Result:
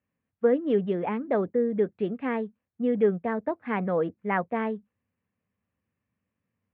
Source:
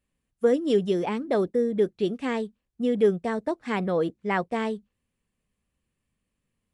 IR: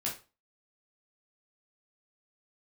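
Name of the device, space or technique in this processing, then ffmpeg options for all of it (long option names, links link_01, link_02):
bass cabinet: -af "highpass=frequency=87:width=0.5412,highpass=frequency=87:width=1.3066,equalizer=frequency=96:width_type=q:width=4:gain=5,equalizer=frequency=140:width_type=q:width=4:gain=-5,equalizer=frequency=360:width_type=q:width=4:gain=-5,lowpass=frequency=2300:width=0.5412,lowpass=frequency=2300:width=1.3066"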